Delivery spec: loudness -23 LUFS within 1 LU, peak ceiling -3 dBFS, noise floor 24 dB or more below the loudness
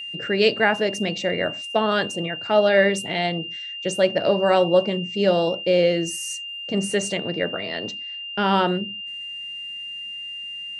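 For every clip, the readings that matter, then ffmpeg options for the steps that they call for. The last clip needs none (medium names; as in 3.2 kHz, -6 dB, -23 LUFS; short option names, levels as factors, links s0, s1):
steady tone 2.8 kHz; tone level -31 dBFS; loudness -22.5 LUFS; peak level -4.0 dBFS; loudness target -23.0 LUFS
-> -af "bandreject=f=2800:w=30"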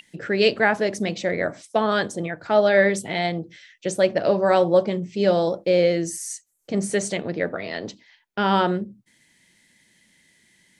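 steady tone not found; loudness -22.0 LUFS; peak level -4.5 dBFS; loudness target -23.0 LUFS
-> -af "volume=0.891"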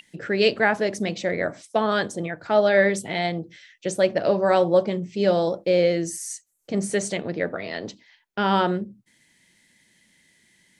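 loudness -23.0 LUFS; peak level -5.5 dBFS; noise floor -64 dBFS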